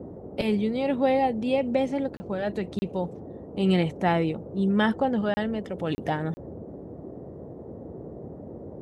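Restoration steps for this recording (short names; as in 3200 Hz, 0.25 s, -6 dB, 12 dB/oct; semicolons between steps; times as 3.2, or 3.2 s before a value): interpolate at 2.17/2.79/5.34/5.95/6.34, 30 ms; noise print and reduce 30 dB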